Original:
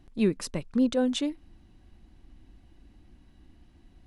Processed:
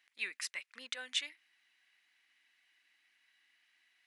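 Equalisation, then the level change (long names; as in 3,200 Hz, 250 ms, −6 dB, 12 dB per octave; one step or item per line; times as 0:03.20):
high-pass with resonance 2,000 Hz, resonance Q 3.3
−4.0 dB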